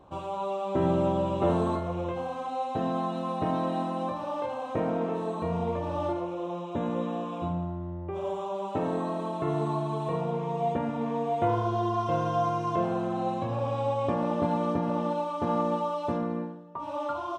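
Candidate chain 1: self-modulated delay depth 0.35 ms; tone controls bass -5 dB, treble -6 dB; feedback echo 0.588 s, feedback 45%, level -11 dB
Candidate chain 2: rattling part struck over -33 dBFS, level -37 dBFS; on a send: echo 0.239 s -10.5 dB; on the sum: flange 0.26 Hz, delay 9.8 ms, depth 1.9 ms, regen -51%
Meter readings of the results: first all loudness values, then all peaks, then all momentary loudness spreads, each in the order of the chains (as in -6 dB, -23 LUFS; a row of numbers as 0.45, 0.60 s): -31.0, -33.5 LUFS; -14.0, -18.5 dBFS; 6, 7 LU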